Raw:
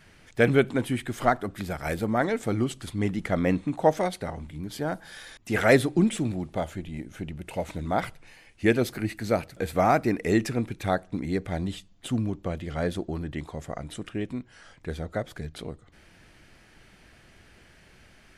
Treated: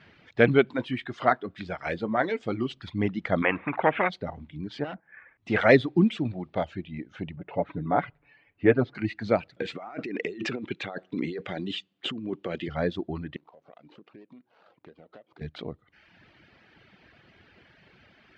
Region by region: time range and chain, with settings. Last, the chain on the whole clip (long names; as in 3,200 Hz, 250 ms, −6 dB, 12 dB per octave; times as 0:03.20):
0:00.73–0:02.70: low-shelf EQ 340 Hz −5.5 dB + notch filter 860 Hz, Q 26 + double-tracking delay 23 ms −13 dB
0:03.42–0:04.10: Butterworth low-pass 2,400 Hz 48 dB per octave + spectral tilt +3 dB per octave + every bin compressed towards the loudest bin 2 to 1
0:04.84–0:05.38: downward expander −41 dBFS + Butterworth low-pass 2,400 Hz 48 dB per octave + hard clipping −33.5 dBFS
0:07.36–0:08.95: low-pass filter 1,700 Hz + comb filter 7 ms, depth 57%
0:09.62–0:12.68: compressor whose output falls as the input rises −31 dBFS + loudspeaker in its box 210–10,000 Hz, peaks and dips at 380 Hz +4 dB, 660 Hz −4 dB, 950 Hz −4 dB, 2,900 Hz +6 dB, 7,200 Hz +7 dB
0:13.36–0:15.41: running median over 25 samples + high-pass filter 260 Hz + downward compressor 5 to 1, threshold −48 dBFS
whole clip: low-pass filter 4,100 Hz 24 dB per octave; reverb reduction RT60 0.95 s; high-pass filter 99 Hz; level +1.5 dB